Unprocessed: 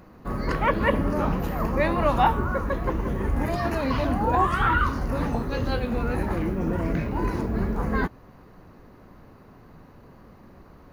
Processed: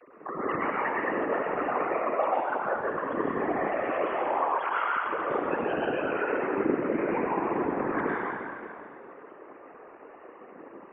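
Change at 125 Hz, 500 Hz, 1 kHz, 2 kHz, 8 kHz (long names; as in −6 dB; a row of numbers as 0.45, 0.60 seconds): −18.5 dB, 0.0 dB, −2.0 dB, −1.5 dB, below −30 dB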